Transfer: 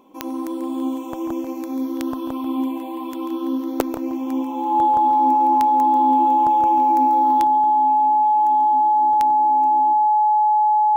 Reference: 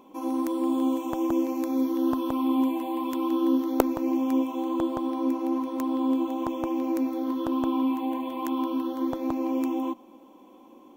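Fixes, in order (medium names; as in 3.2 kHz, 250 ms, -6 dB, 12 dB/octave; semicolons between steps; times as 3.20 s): de-click; band-stop 850 Hz, Q 30; inverse comb 140 ms -10.5 dB; trim 0 dB, from 7.44 s +11.5 dB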